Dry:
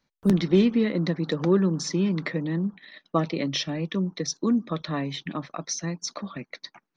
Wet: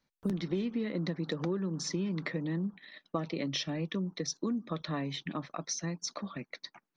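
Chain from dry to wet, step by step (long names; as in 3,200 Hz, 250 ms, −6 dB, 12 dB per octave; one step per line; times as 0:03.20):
downward compressor 6 to 1, threshold −25 dBFS, peak gain reduction 10.5 dB
level −4.5 dB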